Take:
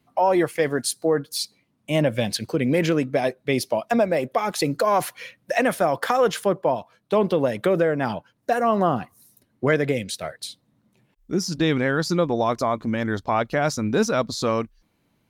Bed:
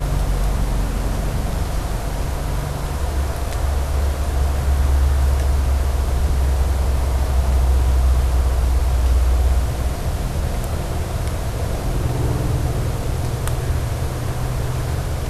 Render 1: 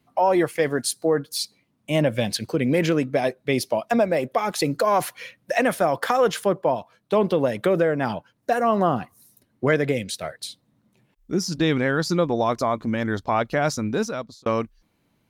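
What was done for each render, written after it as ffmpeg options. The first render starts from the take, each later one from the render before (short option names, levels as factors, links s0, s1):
-filter_complex "[0:a]asplit=2[s0][s1];[s0]atrim=end=14.46,asetpts=PTS-STARTPTS,afade=t=out:st=13.74:d=0.72[s2];[s1]atrim=start=14.46,asetpts=PTS-STARTPTS,afade=t=in:d=0.004:c=hsin[s3];[s2][s3]concat=n=2:v=0:a=1"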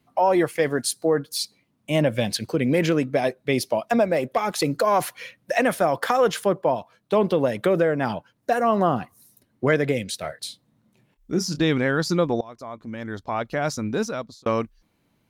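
-filter_complex "[0:a]asettb=1/sr,asplit=3[s0][s1][s2];[s0]atrim=end=4.144[s3];[s1]atrim=start=4.14:end=4.63,asetpts=PTS-STARTPTS,afade=t=in:d=0.004:c=qsin,afade=t=out:st=0.486:d=0.004:c=qsin,asoftclip=type=hard:threshold=0.211[s4];[s2]atrim=start=4.626[s5];[s3][s4]acrossfade=d=0.004:c1=hsin:c2=qsin[s6];[s6][s5]acrossfade=d=0.004:c1=qsin:c2=hsin,asettb=1/sr,asplit=3[s7][s8][s9];[s7]atrim=end=10.214[s10];[s8]atrim=start=10.21:end=11.63,asetpts=PTS-STARTPTS,afade=t=in:d=0.004:c=qsin,afade=t=out:st=1.416:d=0.004:c=qsin,asplit=2[s11][s12];[s12]adelay=27,volume=0.299[s13];[s11][s13]amix=inputs=2:normalize=0,atrim=end_sample=62622[s14];[s9]atrim=start=11.626[s15];[s10][s14]acrossfade=d=0.004:c1=hsin:c2=qsin[s16];[s16][s15]acrossfade=d=0.004:c1=qsin:c2=hsin,asplit=2[s17][s18];[s17]atrim=end=12.41,asetpts=PTS-STARTPTS,afade=t=out:st=12.406:d=0.004:c=hsin:silence=0.0707946[s19];[s18]atrim=start=12.41,asetpts=PTS-STARTPTS,afade=t=in:d=1.74:silence=0.0707946[s20];[s19][s20]concat=n=2:v=0:a=1"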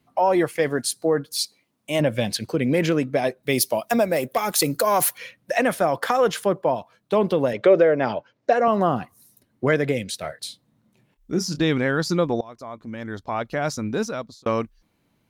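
-filter_complex "[0:a]asettb=1/sr,asplit=3[s0][s1][s2];[s0]atrim=end=1.384[s3];[s1]atrim=start=1.38:end=2,asetpts=PTS-STARTPTS,afade=t=in:d=0.004:c=qsin,afade=t=out:st=0.616:d=0.004:c=qsin,bass=f=250:g=-9,treble=f=4000:g=4[s4];[s2]atrim=start=1.996[s5];[s3][s4]acrossfade=d=0.004:c1=hsin:c2=qsin[s6];[s6][s5]acrossfade=d=0.004:c1=qsin:c2=hsin,asettb=1/sr,asplit=3[s7][s8][s9];[s7]atrim=end=3.434[s10];[s8]atrim=start=3.43:end=5.18,asetpts=PTS-STARTPTS,afade=t=in:d=0.004:c=qsin,afade=t=out:st=1.746:d=0.004:c=qsin,aemphasis=mode=production:type=50fm[s11];[s9]atrim=start=5.176[s12];[s10][s11]acrossfade=d=0.004:c1=hsin:c2=qsin[s13];[s13][s12]acrossfade=d=0.004:c1=qsin:c2=hsin,asettb=1/sr,asplit=3[s14][s15][s16];[s14]atrim=end=7.534[s17];[s15]atrim=start=7.53:end=8.68,asetpts=PTS-STARTPTS,afade=t=in:d=0.004:c=qsin,afade=t=out:st=1.146:d=0.004:c=qsin,highpass=110,equalizer=f=180:t=q:w=4:g=-7,equalizer=f=410:t=q:w=4:g=5,equalizer=f=580:t=q:w=4:g=7,equalizer=f=2200:t=q:w=4:g=4,lowpass=f=6200:w=0.5412,lowpass=f=6200:w=1.3066[s18];[s16]atrim=start=8.676[s19];[s17][s18]acrossfade=d=0.004:c1=hsin:c2=qsin[s20];[s20][s19]acrossfade=d=0.004:c1=qsin:c2=hsin"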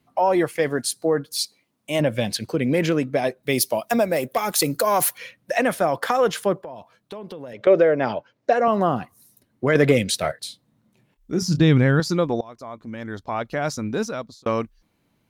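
-filter_complex "[0:a]asettb=1/sr,asplit=3[s0][s1][s2];[s0]atrim=end=6.614[s3];[s1]atrim=start=6.61:end=7.67,asetpts=PTS-STARTPTS,afade=t=in:d=0.004:c=qsin,afade=t=out:st=1.056:d=0.004:c=qsin,acompressor=threshold=0.0224:ratio=6:attack=3.2:release=140:knee=1:detection=peak[s4];[s2]atrim=start=7.666[s5];[s3][s4]acrossfade=d=0.004:c1=hsin:c2=qsin[s6];[s6][s5]acrossfade=d=0.004:c1=qsin:c2=hsin,asettb=1/sr,asplit=3[s7][s8][s9];[s7]atrim=end=9.754[s10];[s8]atrim=start=9.75:end=10.32,asetpts=PTS-STARTPTS,afade=t=in:d=0.004:c=qsin,afade=t=out:st=0.566:d=0.004:c=qsin,acontrast=86[s11];[s9]atrim=start=10.316[s12];[s10][s11]acrossfade=d=0.004:c1=hsin:c2=qsin[s13];[s13][s12]acrossfade=d=0.004:c1=qsin:c2=hsin,asettb=1/sr,asplit=3[s14][s15][s16];[s14]atrim=end=11.424[s17];[s15]atrim=start=11.42:end=12,asetpts=PTS-STARTPTS,afade=t=in:d=0.004:c=qsin,afade=t=out:st=0.576:d=0.004:c=qsin,equalizer=f=110:t=o:w=1.7:g=13.5[s18];[s16]atrim=start=11.996[s19];[s17][s18]acrossfade=d=0.004:c1=hsin:c2=qsin[s20];[s20][s19]acrossfade=d=0.004:c1=qsin:c2=hsin"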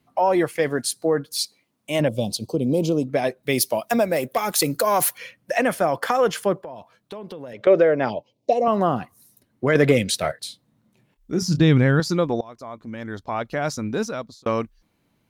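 -filter_complex "[0:a]asettb=1/sr,asplit=3[s0][s1][s2];[s0]atrim=end=2.084[s3];[s1]atrim=start=2.08:end=3.09,asetpts=PTS-STARTPTS,afade=t=in:d=0.004:c=qsin,afade=t=out:st=1.006:d=0.004:c=qsin,asuperstop=centerf=1800:order=4:qfactor=0.64[s4];[s2]atrim=start=3.086[s5];[s3][s4]acrossfade=d=0.004:c1=hsin:c2=qsin[s6];[s6][s5]acrossfade=d=0.004:c1=qsin:c2=hsin,asettb=1/sr,asplit=3[s7][s8][s9];[s7]atrim=end=5.154[s10];[s8]atrim=start=5.15:end=6.48,asetpts=PTS-STARTPTS,afade=t=in:d=0.004:c=qsin,afade=t=out:st=1.326:d=0.004:c=qsin,bandreject=f=3800:w=12[s11];[s9]atrim=start=6.476[s12];[s10][s11]acrossfade=d=0.004:c1=hsin:c2=qsin[s13];[s13][s12]acrossfade=d=0.004:c1=qsin:c2=hsin,asplit=3[s14][s15][s16];[s14]afade=t=out:st=8.09:d=0.02[s17];[s15]asuperstop=centerf=1500:order=4:qfactor=0.79,afade=t=in:st=8.09:d=0.02,afade=t=out:st=8.65:d=0.02[s18];[s16]afade=t=in:st=8.65:d=0.02[s19];[s17][s18][s19]amix=inputs=3:normalize=0"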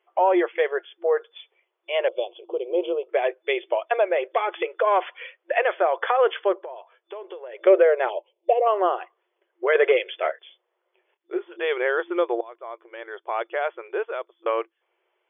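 -af "afftfilt=real='re*between(b*sr/4096,340,3500)':imag='im*between(b*sr/4096,340,3500)':win_size=4096:overlap=0.75"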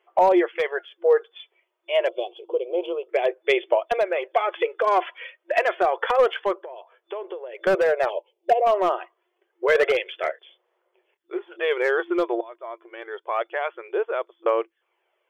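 -af "volume=4.47,asoftclip=hard,volume=0.224,aphaser=in_gain=1:out_gain=1:delay=3.2:decay=0.4:speed=0.28:type=sinusoidal"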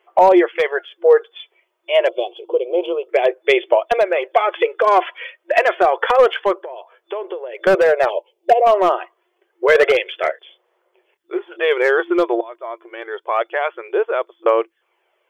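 -af "volume=2.11,alimiter=limit=0.708:level=0:latency=1"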